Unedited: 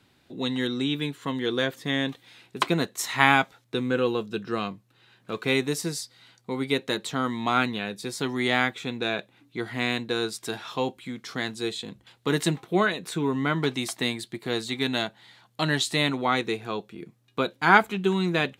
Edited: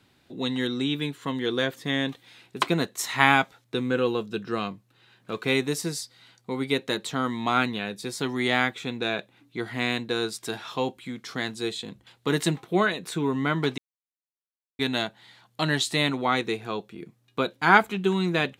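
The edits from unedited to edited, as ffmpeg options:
-filter_complex "[0:a]asplit=3[s0][s1][s2];[s0]atrim=end=13.78,asetpts=PTS-STARTPTS,afade=t=out:st=13.776:d=0.004:c=hsin[s3];[s1]atrim=start=13.78:end=14.79,asetpts=PTS-STARTPTS,volume=0[s4];[s2]atrim=start=14.79,asetpts=PTS-STARTPTS,afade=t=in:d=0.004:c=hsin[s5];[s3][s4][s5]concat=n=3:v=0:a=1"

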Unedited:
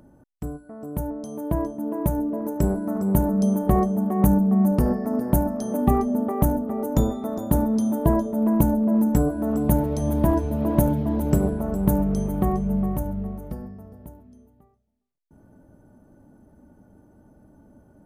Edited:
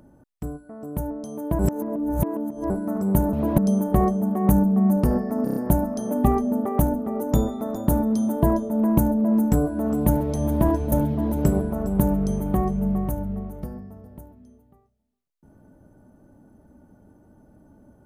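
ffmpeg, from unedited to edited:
-filter_complex "[0:a]asplit=10[s0][s1][s2][s3][s4][s5][s6][s7][s8][s9];[s0]atrim=end=1.592[s10];[s1]atrim=start=1.588:end=2.702,asetpts=PTS-STARTPTS,areverse[s11];[s2]atrim=start=2.698:end=3.332[s12];[s3]atrim=start=10.548:end=10.802[s13];[s4]atrim=start=3.328:end=5.222[s14];[s5]atrim=start=5.188:end=5.222[s15];[s6]atrim=start=5.188:end=5.222[s16];[s7]atrim=start=5.188:end=5.222[s17];[s8]atrim=start=5.188:end=10.552[s18];[s9]atrim=start=10.798[s19];[s10][s11]acrossfade=d=0.004:c1=hsin:c2=hsin[s20];[s20][s12]acrossfade=d=0.004:c1=hsin:c2=hsin[s21];[s21][s13]acrossfade=d=0.004:c1=hsin:c2=hsin[s22];[s22][s14]acrossfade=d=0.004:c1=hsin:c2=hsin[s23];[s23][s15]acrossfade=d=0.004:c1=hsin:c2=hsin[s24];[s24][s16]acrossfade=d=0.004:c1=hsin:c2=hsin[s25];[s25][s17]acrossfade=d=0.004:c1=hsin:c2=hsin[s26];[s26][s18]acrossfade=d=0.004:c1=hsin:c2=hsin[s27];[s27][s19]acrossfade=d=0.004:c1=hsin:c2=hsin"

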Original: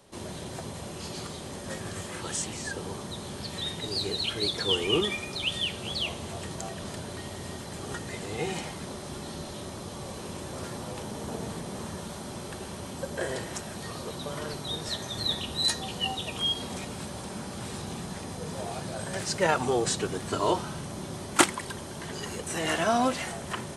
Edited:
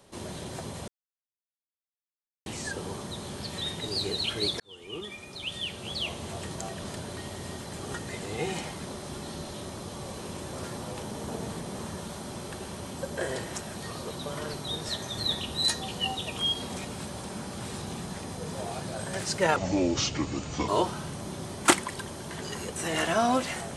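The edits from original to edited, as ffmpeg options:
-filter_complex "[0:a]asplit=6[s0][s1][s2][s3][s4][s5];[s0]atrim=end=0.88,asetpts=PTS-STARTPTS,afade=t=out:st=0.876:d=0.004:c=hsin[s6];[s1]atrim=start=0.88:end=2.46,asetpts=PTS-STARTPTS,volume=0[s7];[s2]atrim=start=2.46:end=4.6,asetpts=PTS-STARTPTS,afade=t=in:d=0.004:c=hsin,afade=t=out:st=2.136:d=0.004:c=hsin[s8];[s3]atrim=start=4.6:end=19.564,asetpts=PTS-STARTPTS,afade=t=in:d=1.7[s9];[s4]atrim=start=19.56:end=20.39,asetpts=PTS-STARTPTS,asetrate=32634,aresample=44100[s10];[s5]atrim=start=20.386[s11];[s6][s7][s8][s9]concat=n=4:v=0:a=1[s12];[s12][s10]acrossfade=d=0.004:c1=hsin:c2=hsin[s13];[s13][s11]acrossfade=d=0.004:c1=hsin:c2=hsin"

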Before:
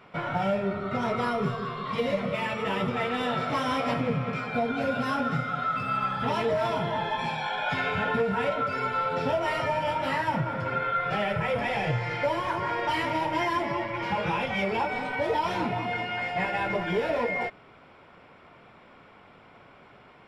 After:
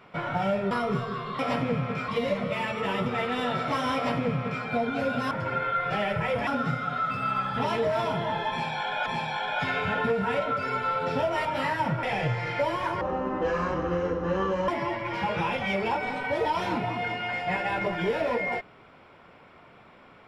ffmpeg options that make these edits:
-filter_complex "[0:a]asplit=11[s0][s1][s2][s3][s4][s5][s6][s7][s8][s9][s10];[s0]atrim=end=0.712[s11];[s1]atrim=start=1.218:end=1.902[s12];[s2]atrim=start=3.768:end=4.462[s13];[s3]atrim=start=1.898:end=5.132[s14];[s4]atrim=start=10.508:end=11.672[s15];[s5]atrim=start=5.128:end=7.722[s16];[s6]atrim=start=7.158:end=9.552[s17];[s7]atrim=start=9.928:end=10.512[s18];[s8]atrim=start=11.668:end=12.654[s19];[s9]atrim=start=12.65:end=13.57,asetpts=PTS-STARTPTS,asetrate=24255,aresample=44100,atrim=end_sample=73767,asetpts=PTS-STARTPTS[s20];[s10]atrim=start=13.566[s21];[s11][s12]acrossfade=d=0.004:c1=hsin:c2=hsin[s22];[s22][s13]acrossfade=d=0.004:c1=hsin:c2=hsin[s23];[s23][s14]acrossfade=d=0.004:c1=hsin:c2=hsin[s24];[s24][s15]acrossfade=d=0.004:c1=hsin:c2=hsin[s25];[s25][s16]acrossfade=d=0.004:c1=hsin:c2=hsin[s26];[s26][s17]acrossfade=d=0.004:c1=hsin:c2=hsin[s27];[s27][s18]acrossfade=d=0.004:c1=hsin:c2=hsin[s28];[s28][s19]acrossfade=d=0.004:c1=hsin:c2=hsin[s29];[s29][s20]acrossfade=d=0.004:c1=hsin:c2=hsin[s30];[s30][s21]acrossfade=d=0.004:c1=hsin:c2=hsin"

